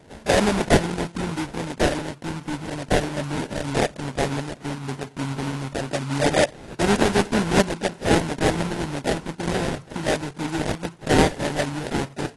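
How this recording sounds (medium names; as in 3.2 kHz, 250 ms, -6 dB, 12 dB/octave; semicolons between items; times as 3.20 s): aliases and images of a low sample rate 1.2 kHz, jitter 20%; AAC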